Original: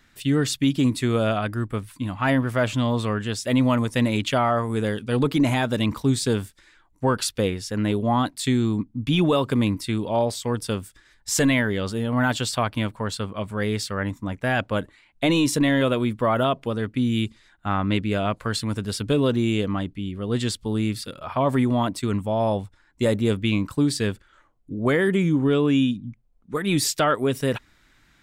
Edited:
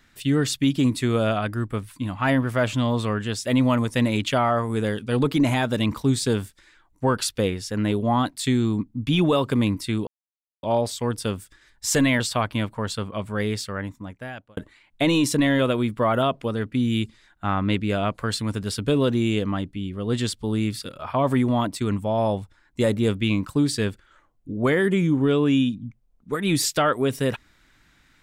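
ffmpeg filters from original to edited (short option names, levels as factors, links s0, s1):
-filter_complex "[0:a]asplit=4[s0][s1][s2][s3];[s0]atrim=end=10.07,asetpts=PTS-STARTPTS,afade=t=out:st=10.066:d=0.004:c=hsin,apad=pad_dur=0.56[s4];[s1]atrim=start=10.07:end=11.642,asetpts=PTS-STARTPTS,afade=t=in:d=0.004:c=hsin[s5];[s2]atrim=start=12.418:end=14.79,asetpts=PTS-STARTPTS,afade=t=out:st=1.202:d=1.17[s6];[s3]atrim=start=14.79,asetpts=PTS-STARTPTS,afade=t=in:d=0.004:c=hsin[s7];[s4][s5]concat=n=2:v=0:a=1[s8];[s6][s7]concat=n=2:v=0:a=1[s9];[s8][s9]acrossfade=d=0.004:c1=hsin:c2=hsin"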